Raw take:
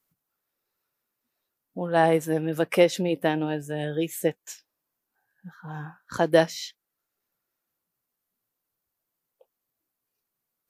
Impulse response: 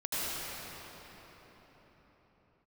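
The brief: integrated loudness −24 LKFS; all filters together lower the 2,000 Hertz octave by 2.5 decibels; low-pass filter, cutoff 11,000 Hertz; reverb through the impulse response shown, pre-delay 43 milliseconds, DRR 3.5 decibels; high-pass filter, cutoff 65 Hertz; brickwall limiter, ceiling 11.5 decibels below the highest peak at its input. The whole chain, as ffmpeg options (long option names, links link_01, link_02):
-filter_complex "[0:a]highpass=65,lowpass=11000,equalizer=frequency=2000:width_type=o:gain=-3,alimiter=limit=-17.5dB:level=0:latency=1,asplit=2[link_01][link_02];[1:a]atrim=start_sample=2205,adelay=43[link_03];[link_02][link_03]afir=irnorm=-1:irlink=0,volume=-12dB[link_04];[link_01][link_04]amix=inputs=2:normalize=0,volume=5.5dB"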